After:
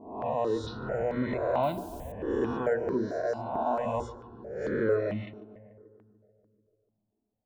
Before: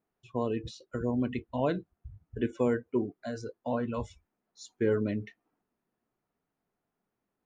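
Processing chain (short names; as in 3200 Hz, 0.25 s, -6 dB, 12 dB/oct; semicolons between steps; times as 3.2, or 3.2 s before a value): spectral swells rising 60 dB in 1.15 s; low-pass opened by the level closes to 310 Hz, open at -27 dBFS; bell 670 Hz +11 dB 0.94 oct; notches 60/120/180/240/300/360/420 Hz; in parallel at +3 dB: limiter -21 dBFS, peak gain reduction 12 dB; 1.63–2.12 on the sum: requantised 8-bit, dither triangular; darkening echo 0.146 s, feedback 71%, low-pass 1900 Hz, level -14.5 dB; step phaser 4.5 Hz 520–2700 Hz; gain -6 dB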